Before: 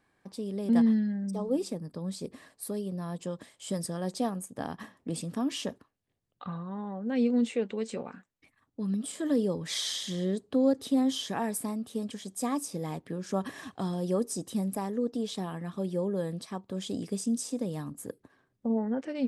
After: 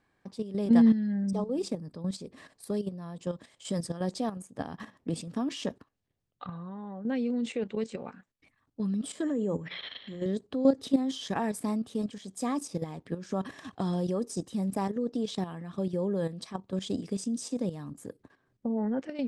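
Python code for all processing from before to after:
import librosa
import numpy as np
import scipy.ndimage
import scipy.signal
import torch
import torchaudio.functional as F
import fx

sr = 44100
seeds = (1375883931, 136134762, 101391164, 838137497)

y = fx.chain(x, sr, fx.hum_notches(base_hz=60, count=3),
    fx.resample_bad(factor=6, down='filtered', up='zero_stuff'),
    fx.lowpass(hz=2700.0, slope=24), at=(9.23, 10.26))
y = scipy.signal.sosfilt(scipy.signal.butter(2, 7700.0, 'lowpass', fs=sr, output='sos'), y)
y = fx.low_shelf(y, sr, hz=120.0, db=3.5)
y = fx.level_steps(y, sr, step_db=11)
y = y * 10.0 ** (4.0 / 20.0)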